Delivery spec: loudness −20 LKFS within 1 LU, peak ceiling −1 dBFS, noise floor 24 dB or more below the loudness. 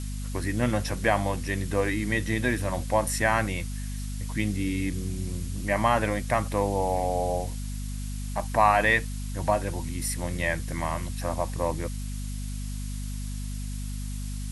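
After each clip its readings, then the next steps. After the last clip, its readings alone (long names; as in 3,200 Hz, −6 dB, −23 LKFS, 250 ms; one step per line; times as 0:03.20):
mains hum 50 Hz; hum harmonics up to 250 Hz; level of the hum −30 dBFS; background noise floor −33 dBFS; target noise floor −52 dBFS; integrated loudness −28.0 LKFS; sample peak −7.5 dBFS; target loudness −20.0 LKFS
→ hum removal 50 Hz, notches 5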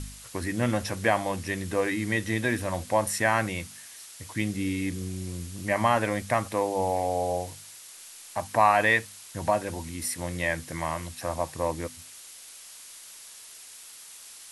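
mains hum none found; background noise floor −47 dBFS; target noise floor −52 dBFS
→ broadband denoise 6 dB, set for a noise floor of −47 dBFS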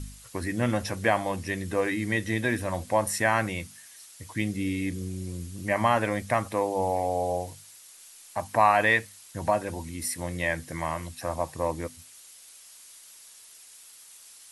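background noise floor −51 dBFS; target noise floor −52 dBFS
→ broadband denoise 6 dB, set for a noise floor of −51 dBFS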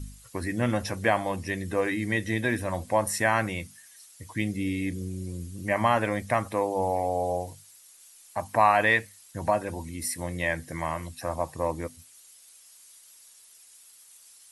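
background noise floor −54 dBFS; integrated loudness −28.0 LKFS; sample peak −8.0 dBFS; target loudness −20.0 LKFS
→ level +8 dB
brickwall limiter −1 dBFS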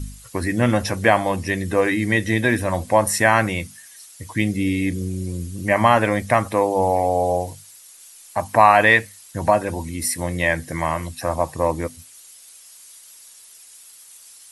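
integrated loudness −20.0 LKFS; sample peak −1.0 dBFS; background noise floor −46 dBFS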